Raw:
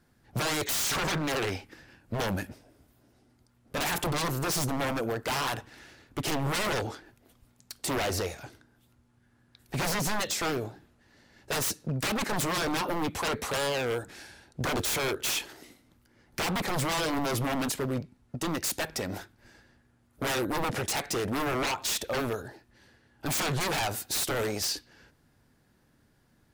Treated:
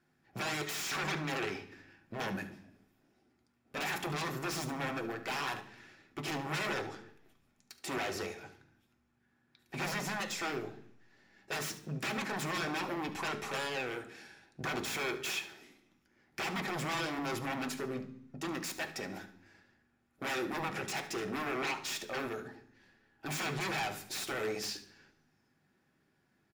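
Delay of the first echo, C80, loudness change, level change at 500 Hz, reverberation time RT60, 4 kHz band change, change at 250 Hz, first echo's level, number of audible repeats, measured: 72 ms, 17.0 dB, -7.0 dB, -7.5 dB, 0.65 s, -7.5 dB, -6.5 dB, -15.0 dB, 1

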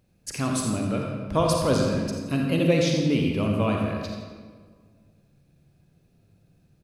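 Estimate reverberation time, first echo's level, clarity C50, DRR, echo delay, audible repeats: 1.7 s, -9.5 dB, 0.5 dB, -0.5 dB, 85 ms, 1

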